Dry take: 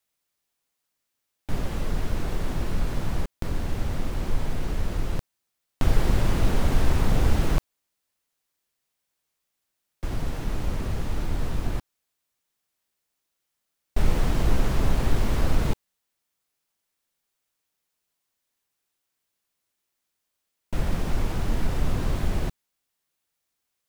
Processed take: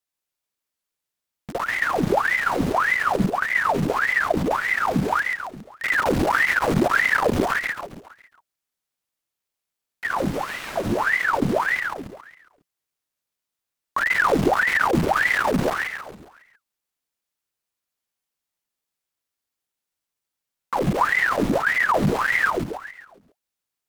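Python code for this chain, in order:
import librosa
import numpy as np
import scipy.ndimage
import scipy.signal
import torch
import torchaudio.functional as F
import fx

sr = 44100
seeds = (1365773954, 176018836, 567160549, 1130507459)

p1 = fx.highpass(x, sr, hz=410.0, slope=24, at=(10.34, 10.76))
p2 = fx.leveller(p1, sr, passes=2)
p3 = fx.clip_asym(p2, sr, top_db=-23.5, bottom_db=-12.0)
p4 = p3 + fx.echo_feedback(p3, sr, ms=137, feedback_pct=47, wet_db=-3, dry=0)
y = fx.ring_lfo(p4, sr, carrier_hz=1100.0, swing_pct=85, hz=1.7)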